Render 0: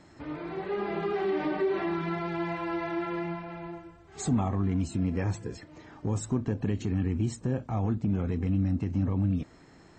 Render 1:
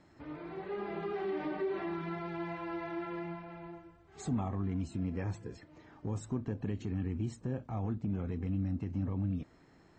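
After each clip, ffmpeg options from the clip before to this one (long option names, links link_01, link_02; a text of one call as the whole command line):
ffmpeg -i in.wav -af "highshelf=frequency=6700:gain=-9,volume=-7dB" out.wav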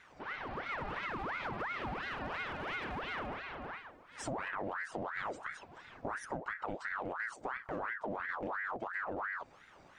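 ffmpeg -i in.wav -af "acompressor=threshold=-38dB:ratio=6,aeval=exprs='clip(val(0),-1,0.0106)':channel_layout=same,aeval=exprs='val(0)*sin(2*PI*1100*n/s+1100*0.65/2.9*sin(2*PI*2.9*n/s))':channel_layout=same,volume=5.5dB" out.wav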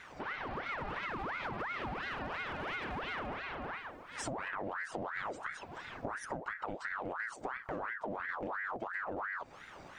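ffmpeg -i in.wav -af "acompressor=threshold=-47dB:ratio=2.5,volume=7.5dB" out.wav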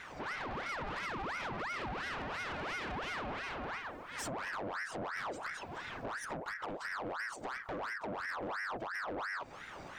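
ffmpeg -i in.wav -af "asoftclip=type=tanh:threshold=-39dB,volume=4dB" out.wav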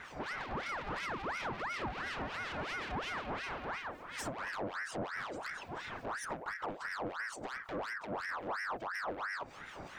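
ffmpeg -i in.wav -filter_complex "[0:a]acrossover=split=1800[link_01][link_02];[link_01]aeval=exprs='val(0)*(1-0.7/2+0.7/2*cos(2*PI*5.4*n/s))':channel_layout=same[link_03];[link_02]aeval=exprs='val(0)*(1-0.7/2-0.7/2*cos(2*PI*5.4*n/s))':channel_layout=same[link_04];[link_03][link_04]amix=inputs=2:normalize=0,volume=3.5dB" out.wav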